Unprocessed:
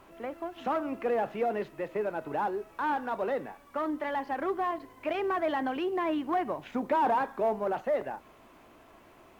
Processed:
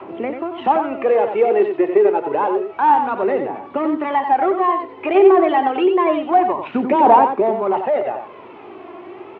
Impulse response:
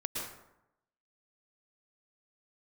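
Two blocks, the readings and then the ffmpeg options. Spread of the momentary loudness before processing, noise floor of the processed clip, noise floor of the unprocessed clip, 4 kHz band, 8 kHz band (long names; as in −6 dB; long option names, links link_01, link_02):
7 LU, −39 dBFS, −57 dBFS, +9.5 dB, can't be measured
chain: -filter_complex "[0:a]adynamicequalizer=threshold=0.00316:dfrequency=170:dqfactor=1.2:tfrequency=170:tqfactor=1.2:attack=5:release=100:ratio=0.375:range=3.5:mode=cutabove:tftype=bell,asplit=2[link_01][link_02];[link_02]acompressor=threshold=-44dB:ratio=4,volume=-0.5dB[link_03];[link_01][link_03]amix=inputs=2:normalize=0,aphaser=in_gain=1:out_gain=1:delay=2.9:decay=0.52:speed=0.28:type=triangular,acontrast=76,acrusher=bits=7:mode=log:mix=0:aa=0.000001,highpass=frequency=110:width=0.5412,highpass=frequency=110:width=1.3066,equalizer=frequency=160:width_type=q:width=4:gain=-4,equalizer=frequency=370:width_type=q:width=4:gain=8,equalizer=frequency=820:width_type=q:width=4:gain=3,equalizer=frequency=1600:width_type=q:width=4:gain=-6,lowpass=frequency=3000:width=0.5412,lowpass=frequency=3000:width=1.3066,aecho=1:1:91:0.447,volume=2dB"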